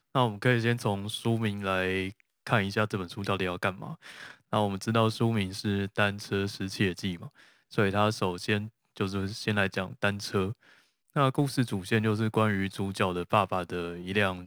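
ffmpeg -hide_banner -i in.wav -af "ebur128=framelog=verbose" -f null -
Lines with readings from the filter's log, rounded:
Integrated loudness:
  I:         -29.2 LUFS
  Threshold: -39.6 LUFS
Loudness range:
  LRA:         2.2 LU
  Threshold: -49.8 LUFS
  LRA low:   -30.8 LUFS
  LRA high:  -28.6 LUFS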